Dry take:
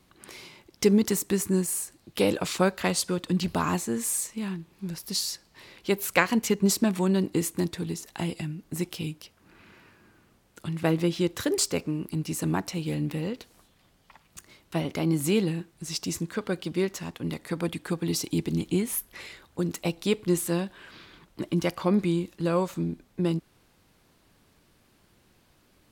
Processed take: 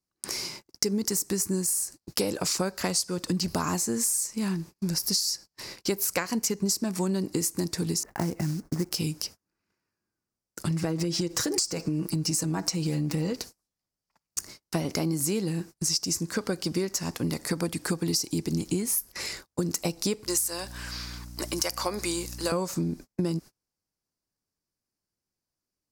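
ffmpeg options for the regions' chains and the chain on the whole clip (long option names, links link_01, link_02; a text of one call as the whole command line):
ffmpeg -i in.wav -filter_complex "[0:a]asettb=1/sr,asplit=3[link_01][link_02][link_03];[link_01]atrim=end=8.034[link_04];[link_02]atrim=start=8.03:end=8.92,asetpts=PTS-STARTPTS,afade=type=in:duration=0.004:curve=qsin,afade=type=out:start_time=0.886:duration=0.004:curve=qsin,lowpass=frequency=1900:width=0.5412,lowpass=frequency=1900:width=1.3066,acrusher=bits=5:mode=log:mix=0:aa=0.000001[link_05];[link_03]atrim=start=8.916[link_06];[link_04][link_05]acrossfade=duration=0.004:curve1=hsin:curve2=qsin[link_07];[link_07][link_06]acrossfade=duration=0.004:curve1=qsin:curve2=hsin,asettb=1/sr,asplit=3[link_08][link_09][link_10];[link_08]atrim=end=10.704[link_11];[link_09]atrim=start=10.7:end=13.32,asetpts=PTS-STARTPTS,afade=type=in:duration=0.004:curve=qsin,afade=type=out:start_time=2.616:duration=0.004:curve=qsin,equalizer=frequency=12000:width_type=o:width=0.29:gain=-10.5,aecho=1:1:6.2:0.65,atrim=end_sample=115542,acompressor=threshold=-25dB:ratio=6:attack=3.2:release=140:knee=1:detection=peak[link_12];[link_10]atrim=start=13.316[link_13];[link_11][link_12]acrossfade=duration=0.004:curve1=hsin:curve2=qsin[link_14];[link_14][link_13]acrossfade=duration=0.004:curve1=qsin:curve2=hsin,asettb=1/sr,asplit=3[link_15][link_16][link_17];[link_15]atrim=end=20.264[link_18];[link_16]atrim=start=20.26:end=22.52,asetpts=PTS-STARTPTS,afade=type=in:duration=0.004:curve=qsin,afade=type=out:start_time=2.256:duration=0.004:curve=qsin,highpass=590,highshelf=frequency=4400:gain=6,aeval=exprs='val(0)+0.00447*(sin(2*PI*60*n/s)+sin(2*PI*2*60*n/s)/2+sin(2*PI*3*60*n/s)/3+sin(2*PI*4*60*n/s)/4+sin(2*PI*5*60*n/s)/5)':channel_layout=same[link_19];[link_17]atrim=start=22.516[link_20];[link_18][link_19]acrossfade=duration=0.004:curve1=hsin:curve2=qsin[link_21];[link_21][link_20]acrossfade=duration=0.004:curve1=qsin:curve2=hsin,highshelf=frequency=4200:width_type=q:width=3:gain=6.5,acompressor=threshold=-32dB:ratio=8,agate=range=-36dB:threshold=-48dB:ratio=16:detection=peak,volume=7.5dB" out.wav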